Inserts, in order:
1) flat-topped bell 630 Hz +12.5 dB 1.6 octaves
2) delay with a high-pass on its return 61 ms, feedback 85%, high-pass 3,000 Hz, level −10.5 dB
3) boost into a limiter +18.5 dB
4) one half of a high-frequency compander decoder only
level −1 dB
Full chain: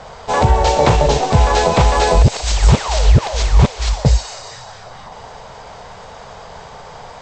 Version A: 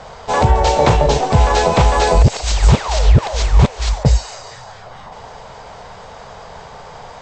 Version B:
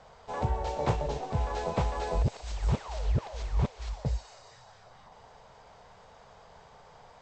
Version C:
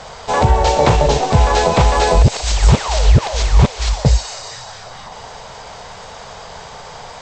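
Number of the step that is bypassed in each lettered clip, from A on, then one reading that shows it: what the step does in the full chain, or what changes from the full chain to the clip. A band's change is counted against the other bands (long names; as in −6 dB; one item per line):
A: 2, change in momentary loudness spread −2 LU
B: 3, change in crest factor +5.0 dB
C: 4, change in momentary loudness spread +13 LU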